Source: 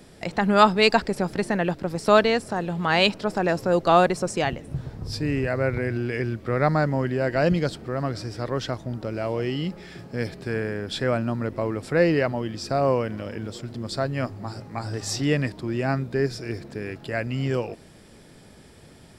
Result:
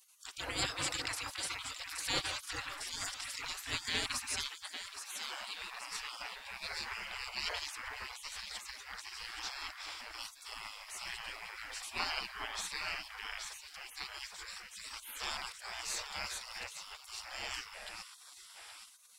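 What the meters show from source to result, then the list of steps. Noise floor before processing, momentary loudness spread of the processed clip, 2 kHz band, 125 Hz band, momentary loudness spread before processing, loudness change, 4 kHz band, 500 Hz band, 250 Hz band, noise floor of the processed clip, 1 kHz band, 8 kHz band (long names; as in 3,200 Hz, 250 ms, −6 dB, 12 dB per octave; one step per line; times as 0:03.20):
−49 dBFS, 10 LU, −11.0 dB, −29.0 dB, 15 LU, −15.0 dB, −6.0 dB, −30.0 dB, −30.0 dB, −56 dBFS, −18.5 dB, −0.5 dB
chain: delay that swaps between a low-pass and a high-pass 411 ms, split 900 Hz, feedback 60%, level −4 dB
gate on every frequency bin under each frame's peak −30 dB weak
level +4 dB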